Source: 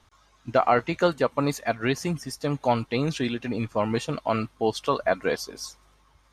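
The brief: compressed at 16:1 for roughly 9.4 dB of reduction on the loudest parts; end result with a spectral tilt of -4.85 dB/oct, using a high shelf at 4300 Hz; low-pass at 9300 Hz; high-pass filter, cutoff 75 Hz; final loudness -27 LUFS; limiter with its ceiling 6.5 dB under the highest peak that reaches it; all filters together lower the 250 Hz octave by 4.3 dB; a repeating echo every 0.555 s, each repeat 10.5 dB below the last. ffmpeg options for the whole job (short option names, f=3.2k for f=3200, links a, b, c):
-af "highpass=75,lowpass=9.3k,equalizer=f=250:t=o:g=-5.5,highshelf=f=4.3k:g=-8.5,acompressor=threshold=-26dB:ratio=16,alimiter=limit=-21dB:level=0:latency=1,aecho=1:1:555|1110|1665:0.299|0.0896|0.0269,volume=7.5dB"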